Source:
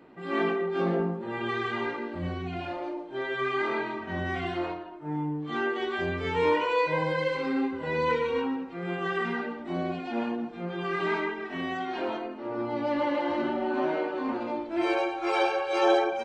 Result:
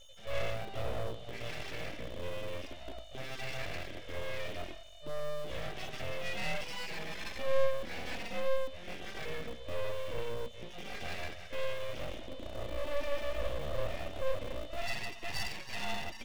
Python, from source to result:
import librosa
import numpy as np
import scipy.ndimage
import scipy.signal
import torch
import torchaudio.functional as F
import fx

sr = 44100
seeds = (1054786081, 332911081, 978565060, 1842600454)

p1 = fx.vowel_filter(x, sr, vowel='i')
p2 = fx.schmitt(p1, sr, flips_db=-40.5)
p3 = p1 + F.gain(torch.from_numpy(p2), -11.0).numpy()
p4 = p3 + 10.0 ** (-59.0 / 20.0) * np.sin(2.0 * np.pi * 3300.0 * np.arange(len(p3)) / sr)
p5 = np.abs(p4)
y = F.gain(torch.from_numpy(p5), 5.0).numpy()